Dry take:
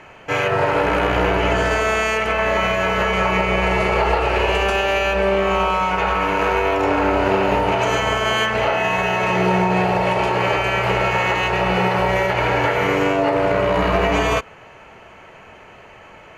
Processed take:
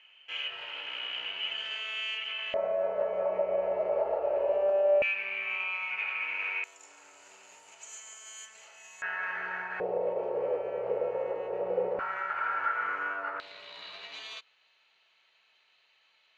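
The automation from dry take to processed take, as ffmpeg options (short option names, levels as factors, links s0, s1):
-af "asetnsamples=n=441:p=0,asendcmd='2.54 bandpass f 590;5.02 bandpass f 2400;6.64 bandpass f 7300;9.02 bandpass f 1600;9.8 bandpass f 500;11.99 bandpass f 1400;13.4 bandpass f 3900',bandpass=f=3000:t=q:w=10:csg=0"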